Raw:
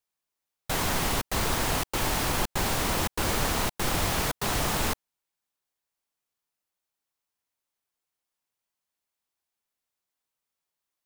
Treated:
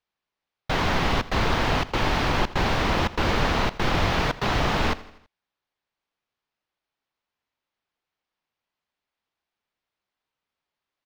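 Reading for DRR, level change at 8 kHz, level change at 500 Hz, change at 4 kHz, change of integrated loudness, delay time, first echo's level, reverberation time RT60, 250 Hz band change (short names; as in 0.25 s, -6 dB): none, -10.0 dB, +5.0 dB, +2.5 dB, +3.0 dB, 82 ms, -18.5 dB, none, +5.5 dB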